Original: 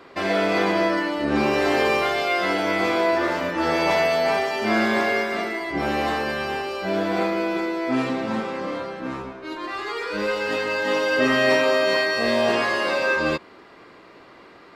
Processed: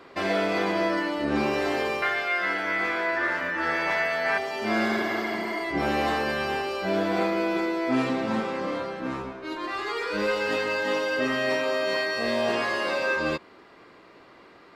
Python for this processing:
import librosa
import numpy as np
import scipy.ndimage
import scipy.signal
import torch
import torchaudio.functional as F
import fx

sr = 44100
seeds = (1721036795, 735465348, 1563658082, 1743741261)

y = fx.peak_eq(x, sr, hz=1700.0, db=14.5, octaves=0.94, at=(2.02, 4.38))
y = fx.spec_repair(y, sr, seeds[0], start_s=4.92, length_s=0.65, low_hz=270.0, high_hz=11000.0, source='both')
y = fx.rider(y, sr, range_db=5, speed_s=0.5)
y = F.gain(torch.from_numpy(y), -6.0).numpy()